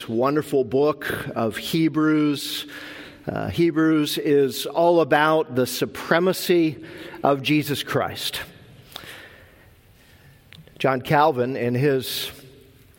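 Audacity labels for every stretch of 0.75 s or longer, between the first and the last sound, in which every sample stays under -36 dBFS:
9.270000	10.530000	silence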